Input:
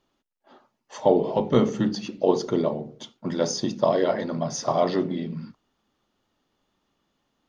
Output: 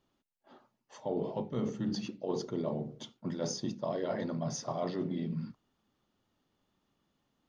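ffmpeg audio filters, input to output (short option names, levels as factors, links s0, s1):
-af "equalizer=f=120:t=o:w=2.1:g=6,areverse,acompressor=threshold=0.0562:ratio=6,areverse,volume=0.501"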